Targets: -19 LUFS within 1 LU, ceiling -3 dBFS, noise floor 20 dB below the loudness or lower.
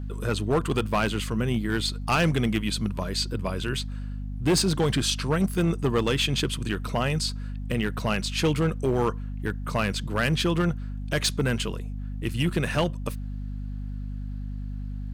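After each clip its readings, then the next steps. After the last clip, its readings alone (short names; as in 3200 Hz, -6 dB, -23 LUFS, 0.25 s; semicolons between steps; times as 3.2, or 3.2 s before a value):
clipped 1.0%; flat tops at -17.0 dBFS; hum 50 Hz; harmonics up to 250 Hz; hum level -30 dBFS; loudness -27.0 LUFS; peak -17.0 dBFS; loudness target -19.0 LUFS
-> clip repair -17 dBFS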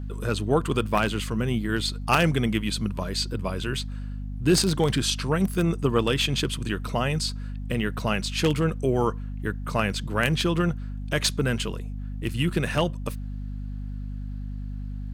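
clipped 0.0%; hum 50 Hz; harmonics up to 250 Hz; hum level -30 dBFS
-> notches 50/100/150/200/250 Hz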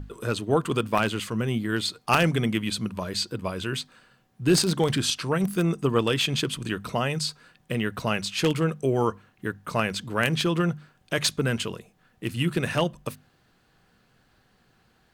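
hum none; loudness -26.0 LUFS; peak -7.0 dBFS; loudness target -19.0 LUFS
-> gain +7 dB; limiter -3 dBFS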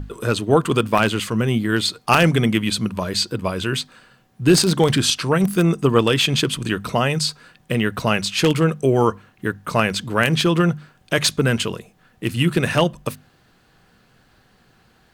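loudness -19.5 LUFS; peak -3.0 dBFS; noise floor -57 dBFS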